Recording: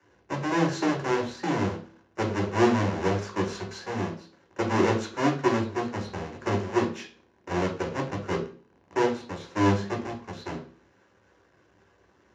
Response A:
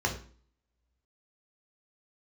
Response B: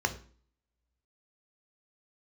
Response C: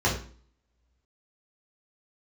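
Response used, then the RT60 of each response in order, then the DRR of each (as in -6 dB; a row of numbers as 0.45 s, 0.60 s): A; 0.45 s, 0.45 s, 0.45 s; 0.5 dB, 6.5 dB, -5.5 dB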